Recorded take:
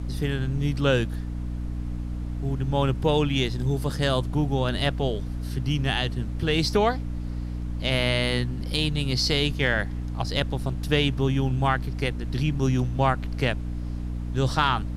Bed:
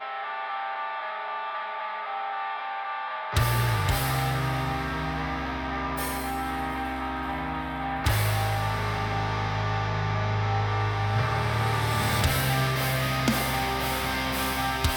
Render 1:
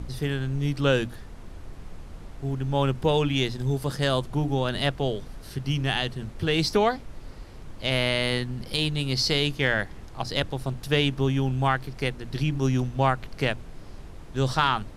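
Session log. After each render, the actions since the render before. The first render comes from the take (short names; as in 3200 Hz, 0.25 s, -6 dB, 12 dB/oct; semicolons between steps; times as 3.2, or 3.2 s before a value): notches 60/120/180/240/300 Hz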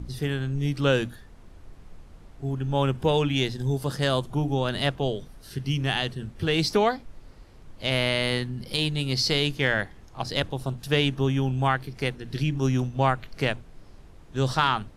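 noise print and reduce 7 dB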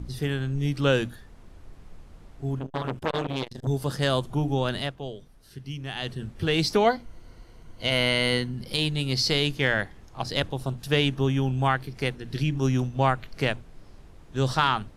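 2.59–3.67 core saturation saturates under 1200 Hz; 4.72–6.14 dip -9 dB, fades 0.19 s; 6.84–8.54 ripple EQ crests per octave 1.9, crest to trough 8 dB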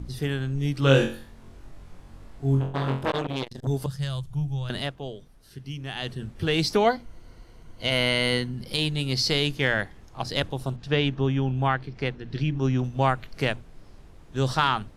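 0.8–3.12 flutter echo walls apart 3.8 m, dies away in 0.4 s; 3.86–4.7 EQ curve 160 Hz 0 dB, 220 Hz -21 dB, 5400 Hz -7 dB; 10.76–12.84 air absorption 130 m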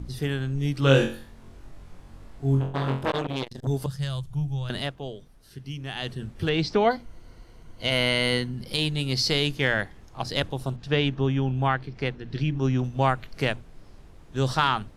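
6.49–6.91 air absorption 140 m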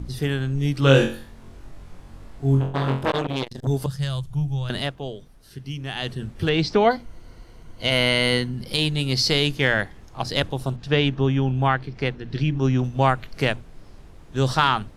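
gain +3.5 dB; limiter -3 dBFS, peak gain reduction 1 dB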